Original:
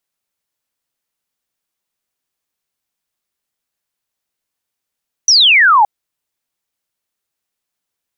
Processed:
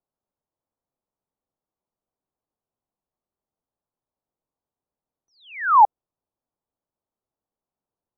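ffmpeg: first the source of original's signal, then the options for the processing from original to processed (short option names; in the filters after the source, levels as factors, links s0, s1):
-f lavfi -i "aevalsrc='0.531*clip(t/0.002,0,1)*clip((0.57-t)/0.002,0,1)*sin(2*PI*6100*0.57/log(790/6100)*(exp(log(790/6100)*t/0.57)-1))':d=0.57:s=44100"
-af "lowpass=f=1000:w=0.5412,lowpass=f=1000:w=1.3066"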